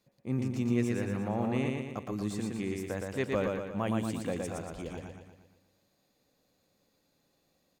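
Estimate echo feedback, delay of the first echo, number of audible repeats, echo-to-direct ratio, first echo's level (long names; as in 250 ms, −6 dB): 52%, 117 ms, 6, −1.5 dB, −3.0 dB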